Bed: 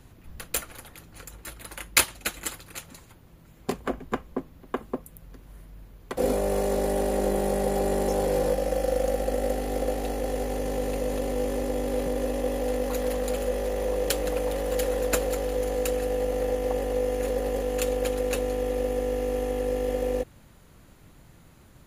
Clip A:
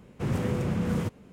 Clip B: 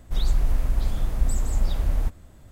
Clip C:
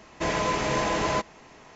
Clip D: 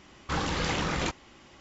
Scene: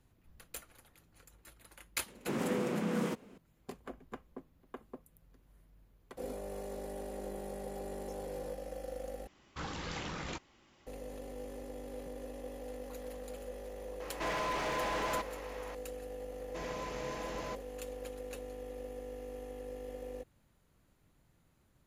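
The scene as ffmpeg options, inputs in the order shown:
-filter_complex "[3:a]asplit=2[s0][s1];[0:a]volume=0.141[s2];[1:a]highpass=f=210:w=0.5412,highpass=f=210:w=1.3066[s3];[s0]asplit=2[s4][s5];[s5]highpass=f=720:p=1,volume=22.4,asoftclip=type=tanh:threshold=0.211[s6];[s4][s6]amix=inputs=2:normalize=0,lowpass=f=2100:p=1,volume=0.501[s7];[s2]asplit=2[s8][s9];[s8]atrim=end=9.274[s10];[4:a]atrim=end=1.6,asetpts=PTS-STARTPTS,volume=0.266[s11];[s9]atrim=start=10.866[s12];[s3]atrim=end=1.32,asetpts=PTS-STARTPTS,volume=0.841,afade=t=in:d=0.004:c=hsin,afade=t=out:st=1.316:d=0.004:c=hsin,adelay=2060[s13];[s7]atrim=end=1.75,asetpts=PTS-STARTPTS,volume=0.188,afade=t=in:d=0.004:c=hsin,afade=t=out:st=1.746:d=0.004:c=hsin,adelay=14000[s14];[s1]atrim=end=1.75,asetpts=PTS-STARTPTS,volume=0.15,afade=t=in:d=0.004:c=hsin,afade=t=out:st=1.746:d=0.004:c=hsin,adelay=16340[s15];[s10][s11]acrossfade=d=0.004:c1=hsin:c2=hsin[s16];[s16][s12]acrossfade=d=0.004:c1=hsin:c2=hsin[s17];[s17][s13][s14][s15]amix=inputs=4:normalize=0"

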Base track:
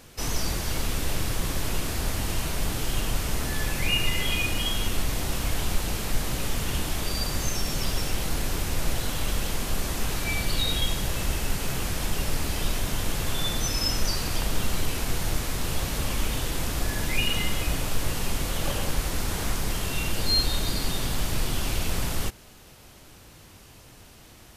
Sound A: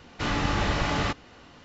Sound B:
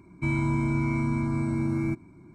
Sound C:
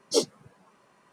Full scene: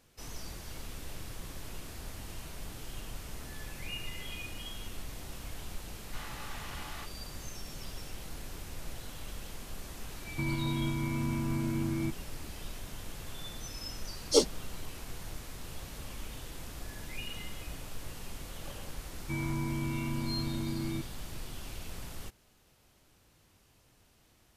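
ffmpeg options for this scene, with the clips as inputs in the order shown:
-filter_complex "[2:a]asplit=2[s0][s1];[0:a]volume=0.168[s2];[1:a]highpass=f=740:w=0.5412,highpass=f=740:w=1.3066[s3];[s0]alimiter=limit=0.106:level=0:latency=1:release=397[s4];[s3]atrim=end=1.64,asetpts=PTS-STARTPTS,volume=0.158,afade=t=in:d=0.004:c=hsin,afade=t=out:st=1.636:d=0.004:c=hsin,adelay=261513S[s5];[s4]atrim=end=2.34,asetpts=PTS-STARTPTS,volume=0.631,afade=t=in:d=0.004:c=hsin,afade=t=out:st=2.336:d=0.004:c=hsin,adelay=10160[s6];[3:a]atrim=end=1.12,asetpts=PTS-STARTPTS,afade=t=in:d=0.004:c=hsin,afade=t=out:st=1.116:d=0.004:c=hsin,adelay=14200[s7];[s1]atrim=end=2.34,asetpts=PTS-STARTPTS,volume=0.376,afade=t=in:d=0.004:c=hsin,afade=t=out:st=2.336:d=0.004:c=hsin,adelay=19070[s8];[s2][s5][s6][s7][s8]amix=inputs=5:normalize=0"

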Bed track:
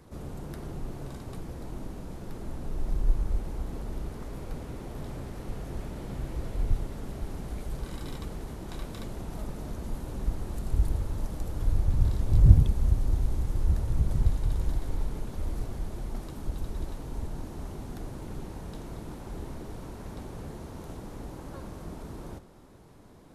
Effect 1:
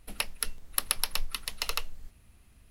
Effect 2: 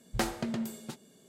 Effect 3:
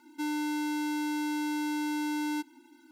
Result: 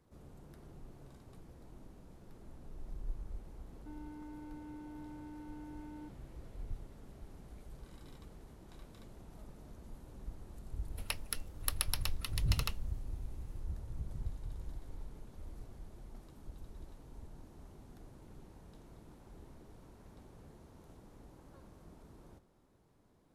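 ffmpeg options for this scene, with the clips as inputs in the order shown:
-filter_complex "[0:a]volume=0.158[s0];[3:a]lowpass=1000,atrim=end=2.91,asetpts=PTS-STARTPTS,volume=0.141,afade=t=in:d=0.004:c=hsin,afade=t=out:st=2.906:d=0.004:c=hsin,adelay=3670[s1];[1:a]atrim=end=2.7,asetpts=PTS-STARTPTS,volume=0.447,afade=t=in:d=0.004:c=hsin,afade=t=out:st=2.696:d=0.004:c=hsin,adelay=480690S[s2];[s0][s1][s2]amix=inputs=3:normalize=0"

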